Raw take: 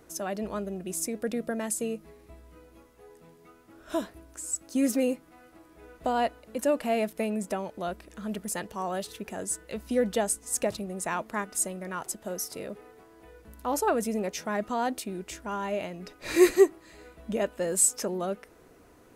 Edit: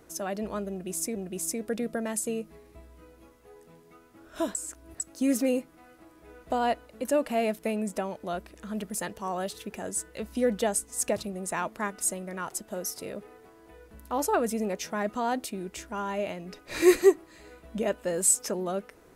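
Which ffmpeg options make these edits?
ffmpeg -i in.wav -filter_complex "[0:a]asplit=4[link_01][link_02][link_03][link_04];[link_01]atrim=end=1.162[link_05];[link_02]atrim=start=0.698:end=4.092[link_06];[link_03]atrim=start=4.088:end=4.542,asetpts=PTS-STARTPTS,areverse[link_07];[link_04]atrim=start=4.538[link_08];[link_05][link_06]acrossfade=duration=0.004:curve1=hsin:curve2=hsin[link_09];[link_09][link_07]acrossfade=duration=0.004:curve1=hsin:curve2=hsin[link_10];[link_10][link_08]acrossfade=duration=0.004:curve1=hsin:curve2=hsin" out.wav

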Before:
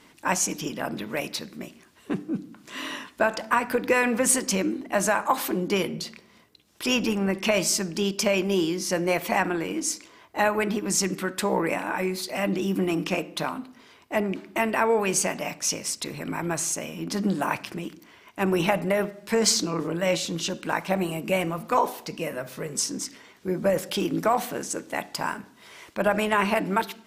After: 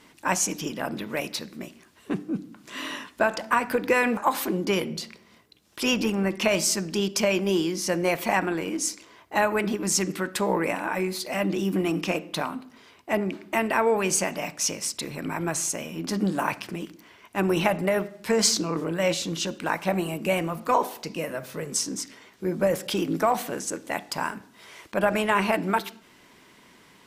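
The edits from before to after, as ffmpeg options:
ffmpeg -i in.wav -filter_complex "[0:a]asplit=2[link_01][link_02];[link_01]atrim=end=4.172[link_03];[link_02]atrim=start=5.198[link_04];[link_03][link_04]acrossfade=duration=0.004:curve1=hsin:curve2=hsin" out.wav

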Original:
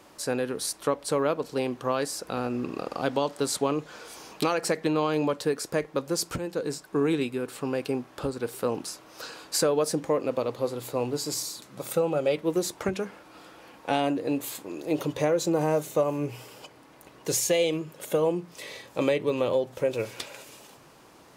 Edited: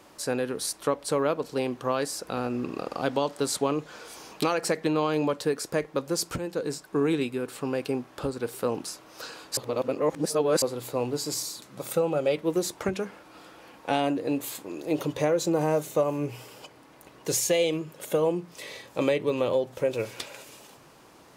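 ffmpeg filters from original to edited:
ffmpeg -i in.wav -filter_complex "[0:a]asplit=3[link_01][link_02][link_03];[link_01]atrim=end=9.572[link_04];[link_02]atrim=start=9.568:end=10.622,asetpts=PTS-STARTPTS,areverse[link_05];[link_03]atrim=start=10.618[link_06];[link_04][link_05]acrossfade=duration=0.004:curve1=hsin:curve2=hsin[link_07];[link_07][link_06]acrossfade=duration=0.004:curve1=hsin:curve2=hsin" out.wav

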